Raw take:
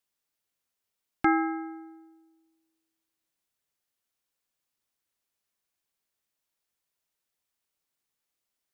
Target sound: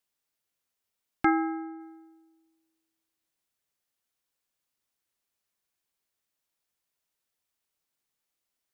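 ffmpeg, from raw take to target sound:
ffmpeg -i in.wav -filter_complex "[0:a]asplit=3[link_01][link_02][link_03];[link_01]afade=type=out:start_time=1.29:duration=0.02[link_04];[link_02]highshelf=frequency=2000:gain=-10,afade=type=in:start_time=1.29:duration=0.02,afade=type=out:start_time=1.79:duration=0.02[link_05];[link_03]afade=type=in:start_time=1.79:duration=0.02[link_06];[link_04][link_05][link_06]amix=inputs=3:normalize=0" out.wav

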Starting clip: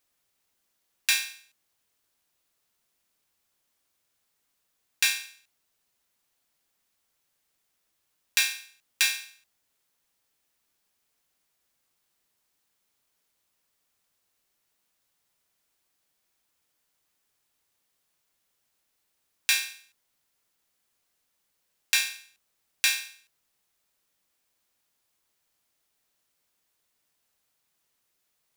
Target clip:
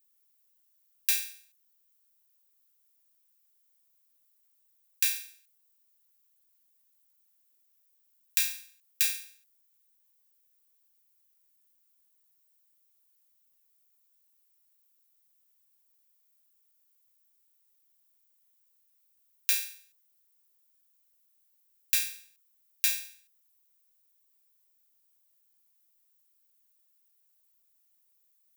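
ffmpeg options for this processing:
ffmpeg -i in.wav -af "aemphasis=mode=production:type=bsi,volume=-12dB" out.wav

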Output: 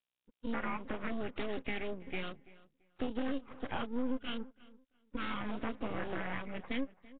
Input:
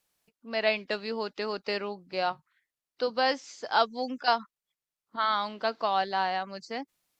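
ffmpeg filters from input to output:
ffmpeg -i in.wav -filter_complex "[0:a]highpass=71,asettb=1/sr,asplit=3[link_01][link_02][link_03];[link_01]atrim=end=4.384[link_04];[link_02]atrim=start=4.38:end=5.58,asetpts=PTS-STARTPTS,afade=type=in:duration=0.004:curve=qsin,afade=type=out:start_time=1.196:duration=0.004:curve=qsin,acrossover=split=2800[link_05][link_06];[link_06]acompressor=threshold=-50dB:ratio=4:attack=1:release=60[link_07];[link_05][link_07]amix=inputs=2:normalize=0[link_08];[link_03]atrim=start=5.576[link_09];[link_04][link_08]acrossfade=duration=0.004:curve1=hsin:curve2=qsin[link_10];[link_10][link_09]acrossfade=duration=0.004:curve1=qsin:curve2=hsin,asplit=3[link_11][link_12][link_13];[link_11]bandpass=frequency=270:width_type=q:width=8,volume=0dB[link_14];[link_12]bandpass=frequency=2290:width_type=q:width=8,volume=-6dB[link_15];[link_13]bandpass=frequency=3010:width_type=q:width=8,volume=-9dB[link_16];[link_14][link_15][link_16]amix=inputs=3:normalize=0,asplit=2[link_17][link_18];[link_18]alimiter=level_in=14.5dB:limit=-24dB:level=0:latency=1:release=24,volume=-14.5dB,volume=-1dB[link_19];[link_17][link_19]amix=inputs=2:normalize=0,acompressor=threshold=-44dB:ratio=6,acrusher=samples=9:mix=1:aa=0.000001:lfo=1:lforange=9:lforate=0.38,asoftclip=type=tanh:threshold=-39dB,afftfilt=real='re*gte(hypot(re,im),0.00112)':imag='im*gte(hypot(re,im),0.00112)':win_size=1024:overlap=0.75,aeval=exprs='max(val(0),0)':channel_layout=same,asplit=2[link_20][link_21];[link_21]adelay=336,lowpass=frequency=2900:poles=1,volume=-19.5dB,asplit=2[link_22][link_23];[link_23]adelay=336,lowpass=frequency=2900:poles=1,volume=0.22[link_24];[link_20][link_22][link_24]amix=inputs=3:normalize=0,volume=16.5dB" -ar 8000 -c:a nellymoser out.flv

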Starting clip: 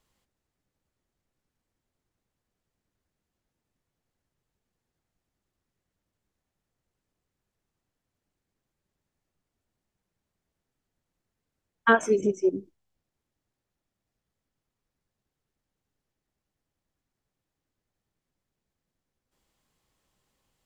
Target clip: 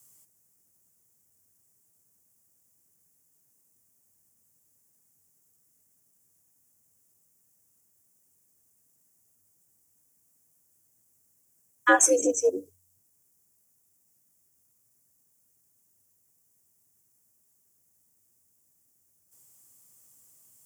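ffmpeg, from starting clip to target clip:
ffmpeg -i in.wav -filter_complex "[0:a]acrossover=split=660[link_01][link_02];[link_02]aexciter=amount=15.7:drive=4.4:freq=5800[link_03];[link_01][link_03]amix=inputs=2:normalize=0,afreqshift=91" out.wav

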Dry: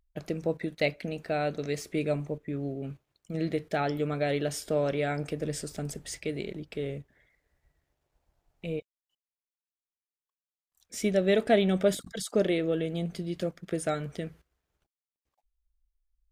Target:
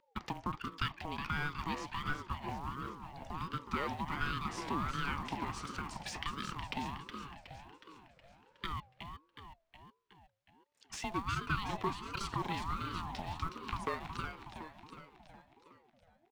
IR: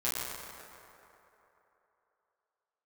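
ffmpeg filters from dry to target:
-filter_complex "[0:a]acompressor=threshold=-43dB:ratio=4,lowpass=4000,equalizer=frequency=150:width=1.2:gain=-8,bandreject=frequency=102.8:width_type=h:width=4,bandreject=frequency=205.6:width_type=h:width=4,bandreject=frequency=308.4:width_type=h:width=4,asplit=2[link_01][link_02];[link_02]aeval=exprs='val(0)*gte(abs(val(0)),0.00501)':channel_layout=same,volume=-12dB[link_03];[link_01][link_03]amix=inputs=2:normalize=0,lowshelf=frequency=270:gain=-9.5,asplit=8[link_04][link_05][link_06][link_07][link_08][link_09][link_10][link_11];[link_05]adelay=367,afreqshift=-58,volume=-7.5dB[link_12];[link_06]adelay=734,afreqshift=-116,volume=-12.4dB[link_13];[link_07]adelay=1101,afreqshift=-174,volume=-17.3dB[link_14];[link_08]adelay=1468,afreqshift=-232,volume=-22.1dB[link_15];[link_09]adelay=1835,afreqshift=-290,volume=-27dB[link_16];[link_10]adelay=2202,afreqshift=-348,volume=-31.9dB[link_17];[link_11]adelay=2569,afreqshift=-406,volume=-36.8dB[link_18];[link_04][link_12][link_13][link_14][link_15][link_16][link_17][link_18]amix=inputs=8:normalize=0,afreqshift=140,aeval=exprs='val(0)*sin(2*PI*530*n/s+530*0.4/1.4*sin(2*PI*1.4*n/s))':channel_layout=same,volume=10.5dB"

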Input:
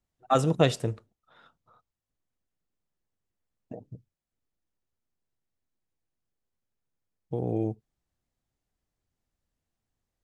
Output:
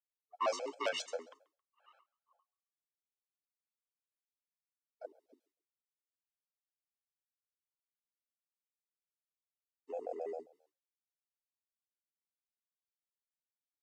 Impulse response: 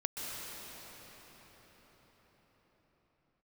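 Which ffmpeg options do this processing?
-filter_complex "[0:a]agate=range=-33dB:threshold=-51dB:ratio=3:detection=peak,highpass=660,asplit=2[link_01][link_02];[link_02]acompressor=threshold=-37dB:ratio=6,volume=-1dB[link_03];[link_01][link_03]amix=inputs=2:normalize=0,asoftclip=type=tanh:threshold=-19dB,afreqshift=220,asplit=2[link_04][link_05];[link_05]asplit=2[link_06][link_07];[link_06]adelay=100,afreqshift=39,volume=-23dB[link_08];[link_07]adelay=200,afreqshift=78,volume=-32.9dB[link_09];[link_08][link_09]amix=inputs=2:normalize=0[link_10];[link_04][link_10]amix=inputs=2:normalize=0,asetrate=32667,aresample=44100,afftfilt=real='re*gt(sin(2*PI*7.5*pts/sr)*(1-2*mod(floor(b*sr/1024/440),2)),0)':imag='im*gt(sin(2*PI*7.5*pts/sr)*(1-2*mod(floor(b*sr/1024/440),2)),0)':win_size=1024:overlap=0.75,volume=-2.5dB"

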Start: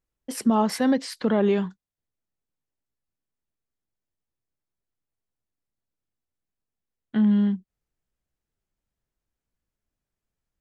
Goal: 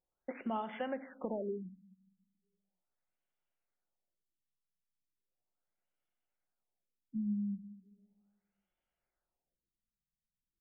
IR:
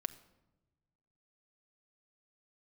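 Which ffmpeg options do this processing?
-filter_complex "[0:a]bass=frequency=250:gain=-15,treble=frequency=4000:gain=4,aecho=1:1:1.4:0.3,acompressor=threshold=-35dB:ratio=10[link_01];[1:a]atrim=start_sample=2205[link_02];[link_01][link_02]afir=irnorm=-1:irlink=0,afftfilt=real='re*lt(b*sr/1024,220*pow(3600/220,0.5+0.5*sin(2*PI*0.37*pts/sr)))':imag='im*lt(b*sr/1024,220*pow(3600/220,0.5+0.5*sin(2*PI*0.37*pts/sr)))':win_size=1024:overlap=0.75,volume=2dB"

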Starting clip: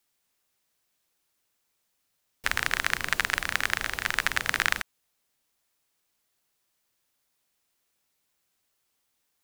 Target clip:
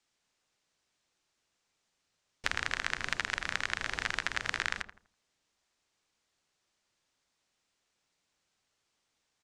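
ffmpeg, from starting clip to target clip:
ffmpeg -i in.wav -filter_complex "[0:a]lowpass=frequency=7500:width=0.5412,lowpass=frequency=7500:width=1.3066,acompressor=threshold=-28dB:ratio=4,asplit=2[link_01][link_02];[link_02]adelay=82,lowpass=frequency=1400:poles=1,volume=-9dB,asplit=2[link_03][link_04];[link_04]adelay=82,lowpass=frequency=1400:poles=1,volume=0.38,asplit=2[link_05][link_06];[link_06]adelay=82,lowpass=frequency=1400:poles=1,volume=0.38,asplit=2[link_07][link_08];[link_08]adelay=82,lowpass=frequency=1400:poles=1,volume=0.38[link_09];[link_03][link_05][link_07][link_09]amix=inputs=4:normalize=0[link_10];[link_01][link_10]amix=inputs=2:normalize=0" out.wav

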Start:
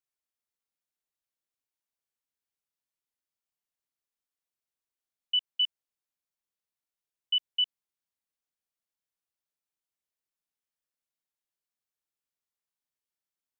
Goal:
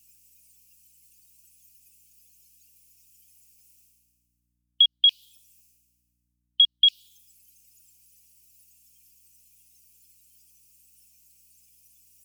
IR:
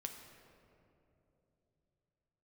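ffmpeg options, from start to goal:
-af "asetrate=48951,aresample=44100,areverse,acompressor=mode=upward:threshold=-32dB:ratio=2.5,areverse,afftdn=noise_reduction=28:noise_floor=-55,firequalizer=gain_entry='entry(850,0);entry(1200,-17);entry(1700,-3);entry(2500,13);entry(3600,-9);entry(5200,1)':delay=0.05:min_phase=1,aeval=exprs='val(0)+0.0002*(sin(2*PI*60*n/s)+sin(2*PI*2*60*n/s)/2+sin(2*PI*3*60*n/s)/3+sin(2*PI*4*60*n/s)/4+sin(2*PI*5*60*n/s)/5)':channel_layout=same,highshelf=frequency=2900:gain=8.5,acompressor=threshold=-27dB:ratio=6,aexciter=amount=9.9:drive=1.1:freq=2800,volume=-2dB"

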